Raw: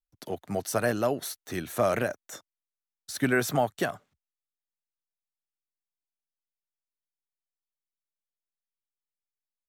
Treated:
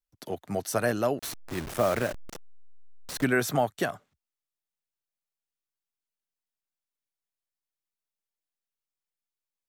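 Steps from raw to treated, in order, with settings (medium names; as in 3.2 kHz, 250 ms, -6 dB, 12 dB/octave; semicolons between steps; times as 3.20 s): 1.19–3.24 s: send-on-delta sampling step -32 dBFS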